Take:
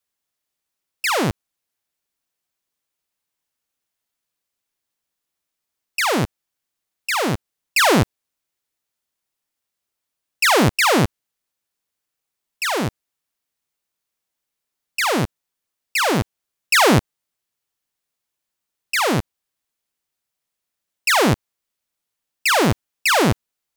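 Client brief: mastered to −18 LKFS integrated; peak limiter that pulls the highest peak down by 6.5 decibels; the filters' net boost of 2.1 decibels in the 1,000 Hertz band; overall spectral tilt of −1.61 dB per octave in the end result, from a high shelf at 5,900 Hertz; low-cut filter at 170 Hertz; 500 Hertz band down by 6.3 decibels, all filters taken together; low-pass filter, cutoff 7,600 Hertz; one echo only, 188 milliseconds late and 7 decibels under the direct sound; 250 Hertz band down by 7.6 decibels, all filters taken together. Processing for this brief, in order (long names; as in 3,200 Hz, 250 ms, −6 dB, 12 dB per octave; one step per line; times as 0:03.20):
high-pass filter 170 Hz
low-pass filter 7,600 Hz
parametric band 250 Hz −6.5 dB
parametric band 500 Hz −8 dB
parametric band 1,000 Hz +5 dB
high-shelf EQ 5,900 Hz +4 dB
brickwall limiter −8 dBFS
single-tap delay 188 ms −7 dB
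level +2.5 dB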